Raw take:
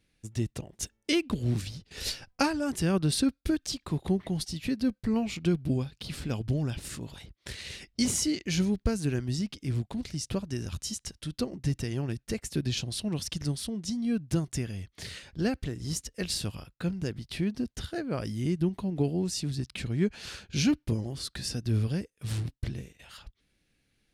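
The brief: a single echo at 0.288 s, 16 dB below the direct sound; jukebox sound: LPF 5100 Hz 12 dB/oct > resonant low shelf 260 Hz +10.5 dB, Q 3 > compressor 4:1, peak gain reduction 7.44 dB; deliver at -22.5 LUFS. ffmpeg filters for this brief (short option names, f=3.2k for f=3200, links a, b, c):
-af "lowpass=5.1k,lowshelf=f=260:t=q:w=3:g=10.5,aecho=1:1:288:0.158,acompressor=threshold=-14dB:ratio=4,volume=-1dB"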